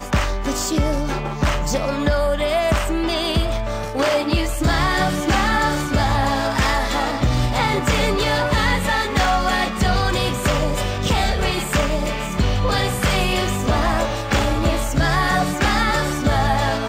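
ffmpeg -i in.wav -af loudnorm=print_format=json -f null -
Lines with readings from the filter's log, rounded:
"input_i" : "-19.7",
"input_tp" : "-7.2",
"input_lra" : "1.5",
"input_thresh" : "-29.7",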